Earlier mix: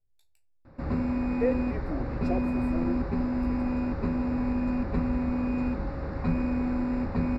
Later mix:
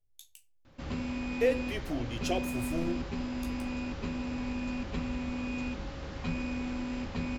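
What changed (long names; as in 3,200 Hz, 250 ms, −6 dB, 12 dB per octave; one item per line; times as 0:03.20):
background −7.5 dB
master: remove moving average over 14 samples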